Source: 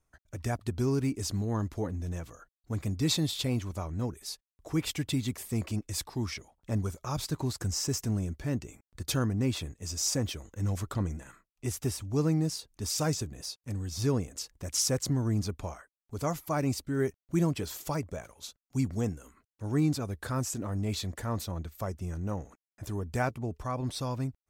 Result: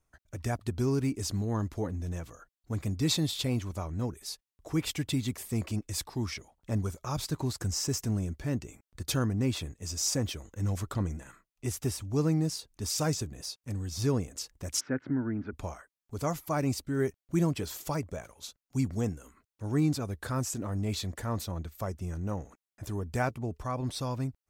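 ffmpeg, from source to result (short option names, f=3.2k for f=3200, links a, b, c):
-filter_complex "[0:a]asplit=3[a][b][c];[a]afade=t=out:st=14.79:d=0.02[d];[b]highpass=180,equalizer=f=180:t=q:w=4:g=-7,equalizer=f=260:t=q:w=4:g=6,equalizer=f=490:t=q:w=4:g=-6,equalizer=f=720:t=q:w=4:g=-6,equalizer=f=1.1k:t=q:w=4:g=-8,equalizer=f=1.5k:t=q:w=4:g=10,lowpass=f=2.1k:w=0.5412,lowpass=f=2.1k:w=1.3066,afade=t=in:st=14.79:d=0.02,afade=t=out:st=15.52:d=0.02[e];[c]afade=t=in:st=15.52:d=0.02[f];[d][e][f]amix=inputs=3:normalize=0"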